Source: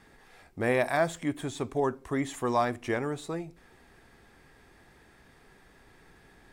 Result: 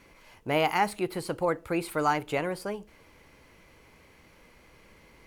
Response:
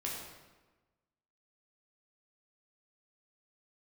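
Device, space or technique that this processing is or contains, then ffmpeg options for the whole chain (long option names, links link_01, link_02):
nightcore: -af "asetrate=54684,aresample=44100,volume=1dB"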